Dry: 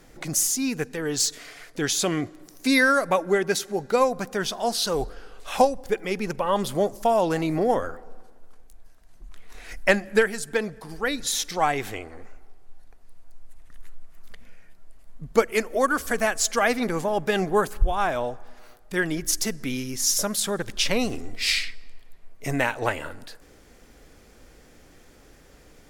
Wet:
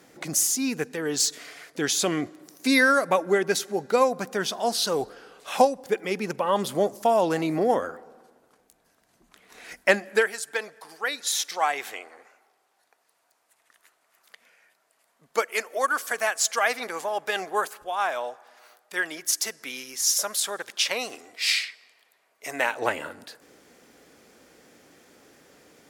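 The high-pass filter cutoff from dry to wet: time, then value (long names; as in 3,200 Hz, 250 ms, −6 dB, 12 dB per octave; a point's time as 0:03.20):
0:09.75 180 Hz
0:10.43 650 Hz
0:22.50 650 Hz
0:22.92 190 Hz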